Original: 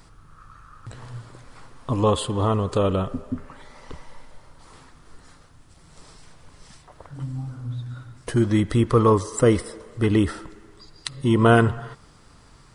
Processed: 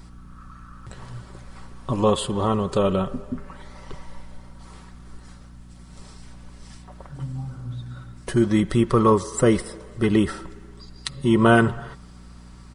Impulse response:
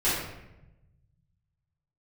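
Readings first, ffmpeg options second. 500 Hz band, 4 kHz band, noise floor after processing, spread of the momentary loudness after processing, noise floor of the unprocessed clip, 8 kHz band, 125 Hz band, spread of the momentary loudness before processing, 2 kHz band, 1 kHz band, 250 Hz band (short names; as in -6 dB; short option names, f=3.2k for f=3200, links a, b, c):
0.0 dB, +1.0 dB, -45 dBFS, 20 LU, -52 dBFS, +1.0 dB, -2.5 dB, 20 LU, +2.0 dB, +0.5 dB, +1.5 dB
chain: -af "aeval=exprs='val(0)+0.00708*(sin(2*PI*60*n/s)+sin(2*PI*2*60*n/s)/2+sin(2*PI*3*60*n/s)/3+sin(2*PI*4*60*n/s)/4+sin(2*PI*5*60*n/s)/5)':c=same,aecho=1:1:5.3:0.45"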